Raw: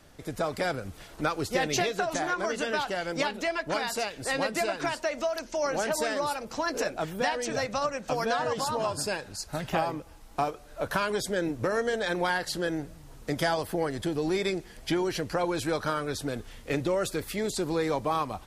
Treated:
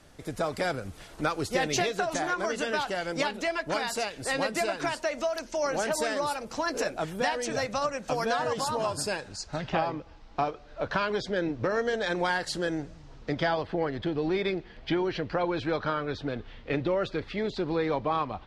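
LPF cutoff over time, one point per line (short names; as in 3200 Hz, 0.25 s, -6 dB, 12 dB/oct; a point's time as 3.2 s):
LPF 24 dB/oct
9.02 s 12000 Hz
9.73 s 5000 Hz
11.61 s 5000 Hz
12.49 s 9500 Hz
13.53 s 4000 Hz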